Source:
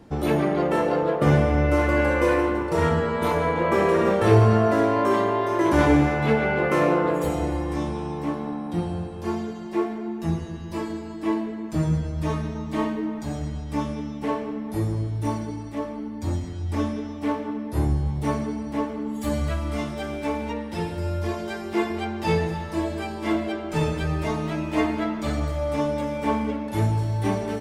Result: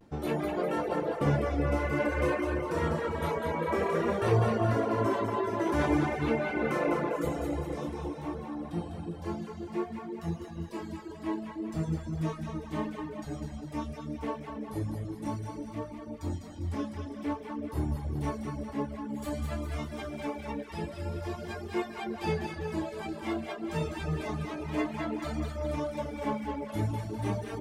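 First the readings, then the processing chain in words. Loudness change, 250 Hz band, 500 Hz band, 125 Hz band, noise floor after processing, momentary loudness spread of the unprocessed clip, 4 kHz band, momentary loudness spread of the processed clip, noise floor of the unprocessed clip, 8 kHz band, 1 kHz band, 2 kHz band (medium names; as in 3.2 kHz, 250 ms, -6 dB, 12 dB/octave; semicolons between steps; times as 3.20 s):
-8.5 dB, -8.5 dB, -8.5 dB, -8.5 dB, -43 dBFS, 10 LU, -8.0 dB, 10 LU, -34 dBFS, -8.0 dB, -8.0 dB, -8.5 dB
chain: vibrato 0.52 Hz 43 cents; two-band feedback delay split 610 Hz, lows 322 ms, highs 201 ms, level -4 dB; reverb removal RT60 0.8 s; trim -8 dB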